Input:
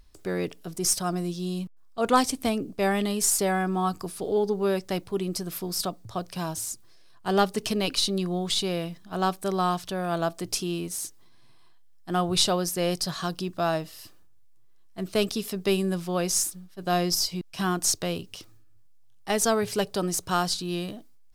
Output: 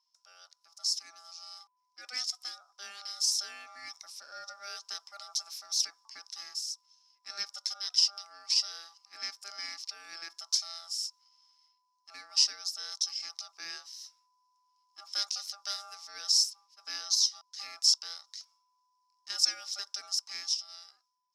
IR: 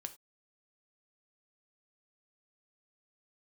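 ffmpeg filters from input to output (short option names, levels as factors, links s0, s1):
-af "dynaudnorm=f=120:g=17:m=3.76,aeval=exprs='val(0)*sin(2*PI*1000*n/s)':c=same,bandpass=f=5300:t=q:w=13:csg=0,volume=2"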